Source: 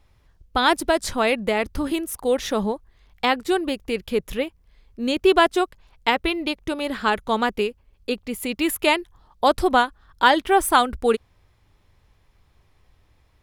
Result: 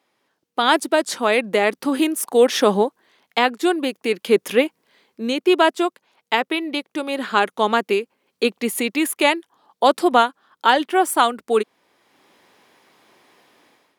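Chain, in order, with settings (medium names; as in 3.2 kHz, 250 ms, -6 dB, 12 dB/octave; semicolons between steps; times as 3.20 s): high-pass 240 Hz 24 dB/octave; level rider gain up to 13.5 dB; speed mistake 25 fps video run at 24 fps; trim -1 dB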